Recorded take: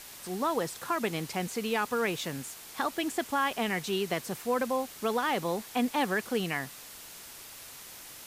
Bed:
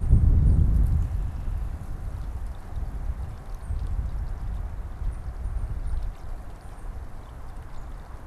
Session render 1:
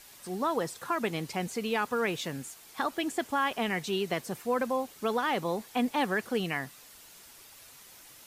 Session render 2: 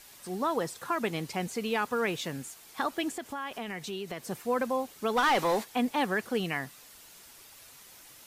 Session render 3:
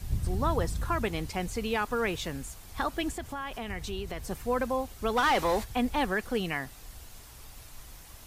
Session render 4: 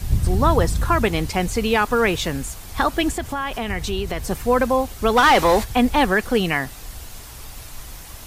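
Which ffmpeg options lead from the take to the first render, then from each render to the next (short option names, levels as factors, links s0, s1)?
-af "afftdn=nr=7:nf=-47"
-filter_complex "[0:a]asettb=1/sr,asplit=3[s0][s1][s2];[s0]atrim=end=3.174[s3];[s1]atrim=start=3.17:end=4.29,asetpts=PTS-STARTPTS,afade=t=in:d=0.004:c=qsin,afade=t=out:st=1.116:d=0.004:c=qsin,acompressor=threshold=0.0158:ratio=2.5:attack=3.2:release=140:knee=1:detection=peak[s4];[s2]atrim=start=4.286[s5];[s3][s4]acrossfade=d=0.004:c1=hsin:c2=qsin[s6];[s6][s5]acrossfade=d=0.004:c1=qsin:c2=hsin,asplit=3[s7][s8][s9];[s7]afade=t=out:st=5.16:d=0.02[s10];[s8]asplit=2[s11][s12];[s12]highpass=f=720:p=1,volume=7.94,asoftclip=type=tanh:threshold=0.141[s13];[s11][s13]amix=inputs=2:normalize=0,lowpass=f=6300:p=1,volume=0.501,afade=t=in:st=5.16:d=0.02,afade=t=out:st=5.63:d=0.02[s14];[s9]afade=t=in:st=5.63:d=0.02[s15];[s10][s14][s15]amix=inputs=3:normalize=0"
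-filter_complex "[1:a]volume=0.251[s0];[0:a][s0]amix=inputs=2:normalize=0"
-af "volume=3.55"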